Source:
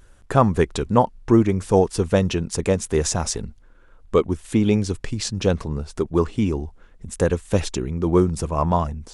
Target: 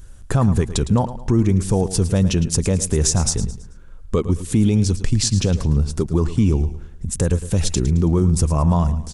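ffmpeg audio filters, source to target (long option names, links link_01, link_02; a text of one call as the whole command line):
ffmpeg -i in.wav -af "bass=frequency=250:gain=11,treble=frequency=4000:gain=9,alimiter=limit=-7dB:level=0:latency=1:release=89,aecho=1:1:109|218|327|436:0.211|0.0782|0.0289|0.0107" out.wav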